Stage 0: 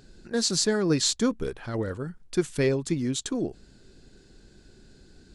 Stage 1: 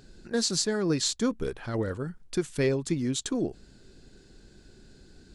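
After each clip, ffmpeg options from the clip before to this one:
-af "alimiter=limit=0.158:level=0:latency=1:release=438"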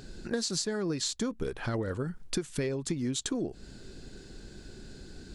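-af "acompressor=threshold=0.0178:ratio=10,volume=2.11"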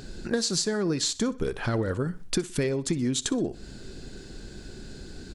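-af "aecho=1:1:62|124|186:0.112|0.0449|0.018,volume=1.78"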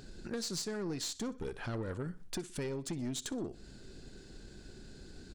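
-af "aeval=exprs='(tanh(14.1*val(0)+0.3)-tanh(0.3))/14.1':c=same,volume=0.376"

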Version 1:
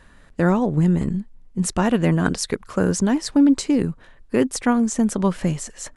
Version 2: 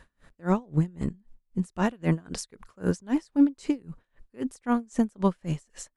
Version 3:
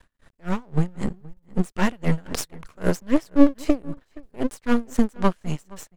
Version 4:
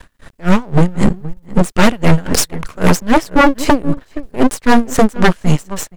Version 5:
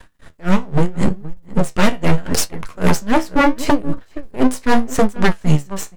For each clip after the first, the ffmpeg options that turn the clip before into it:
-af "aeval=exprs='val(0)*pow(10,-31*(0.5-0.5*cos(2*PI*3.8*n/s))/20)':c=same,volume=0.75"
-filter_complex "[0:a]dynaudnorm=f=260:g=5:m=3.76,aeval=exprs='max(val(0),0)':c=same,asplit=2[s0][s1];[s1]adelay=472.3,volume=0.0794,highshelf=f=4000:g=-10.6[s2];[s0][s2]amix=inputs=2:normalize=0,volume=1.26"
-af "aeval=exprs='0.891*sin(PI/2*4.47*val(0)/0.891)':c=same"
-af "flanger=delay=9.5:depth=6.2:regen=59:speed=0.77:shape=sinusoidal"

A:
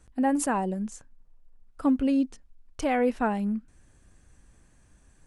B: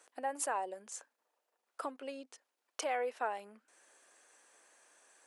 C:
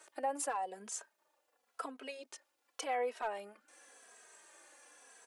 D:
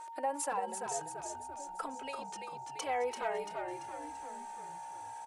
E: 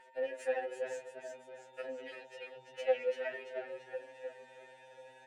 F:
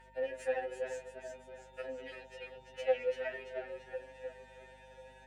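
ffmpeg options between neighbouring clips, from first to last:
-af "acompressor=threshold=0.0158:ratio=3,highpass=f=470:w=0.5412,highpass=f=470:w=1.3066,volume=1.41"
-filter_complex "[0:a]asoftclip=type=hard:threshold=0.0501,alimiter=level_in=2.99:limit=0.0631:level=0:latency=1:release=283,volume=0.335,asplit=2[s0][s1];[s1]adelay=2.8,afreqshift=-0.9[s2];[s0][s2]amix=inputs=2:normalize=1,volume=2.51"
-filter_complex "[0:a]aeval=exprs='val(0)+0.00562*sin(2*PI*920*n/s)':c=same,asplit=2[s0][s1];[s1]asplit=7[s2][s3][s4][s5][s6][s7][s8];[s2]adelay=339,afreqshift=-64,volume=0.531[s9];[s3]adelay=678,afreqshift=-128,volume=0.275[s10];[s4]adelay=1017,afreqshift=-192,volume=0.143[s11];[s5]adelay=1356,afreqshift=-256,volume=0.075[s12];[s6]adelay=1695,afreqshift=-320,volume=0.0389[s13];[s7]adelay=2034,afreqshift=-384,volume=0.0202[s14];[s8]adelay=2373,afreqshift=-448,volume=0.0105[s15];[s9][s10][s11][s12][s13][s14][s15]amix=inputs=7:normalize=0[s16];[s0][s16]amix=inputs=2:normalize=0,volume=1.12"
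-filter_complex "[0:a]aeval=exprs='if(lt(val(0),0),0.251*val(0),val(0))':c=same,asplit=3[s0][s1][s2];[s0]bandpass=f=530:t=q:w=8,volume=1[s3];[s1]bandpass=f=1840:t=q:w=8,volume=0.501[s4];[s2]bandpass=f=2480:t=q:w=8,volume=0.355[s5];[s3][s4][s5]amix=inputs=3:normalize=0,afftfilt=real='re*2.45*eq(mod(b,6),0)':imag='im*2.45*eq(mod(b,6),0)':win_size=2048:overlap=0.75,volume=6.68"
-af "aeval=exprs='val(0)+0.000708*(sin(2*PI*50*n/s)+sin(2*PI*2*50*n/s)/2+sin(2*PI*3*50*n/s)/3+sin(2*PI*4*50*n/s)/4+sin(2*PI*5*50*n/s)/5)':c=same"

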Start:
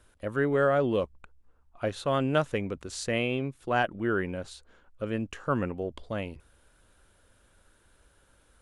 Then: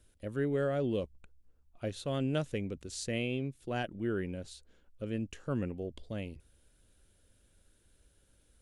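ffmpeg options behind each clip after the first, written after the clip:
-af "equalizer=f=1100:w=0.82:g=-13.5,volume=0.75"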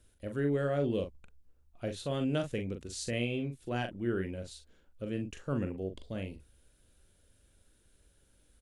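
-filter_complex "[0:a]asplit=2[s0][s1];[s1]adelay=42,volume=0.447[s2];[s0][s2]amix=inputs=2:normalize=0"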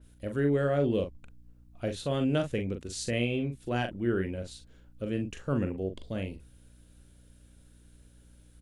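-af "aeval=exprs='val(0)+0.001*(sin(2*PI*60*n/s)+sin(2*PI*2*60*n/s)/2+sin(2*PI*3*60*n/s)/3+sin(2*PI*4*60*n/s)/4+sin(2*PI*5*60*n/s)/5)':c=same,adynamicequalizer=threshold=0.00178:dfrequency=3500:dqfactor=0.7:tfrequency=3500:tqfactor=0.7:attack=5:release=100:ratio=0.375:range=2:mode=cutabove:tftype=highshelf,volume=1.58"

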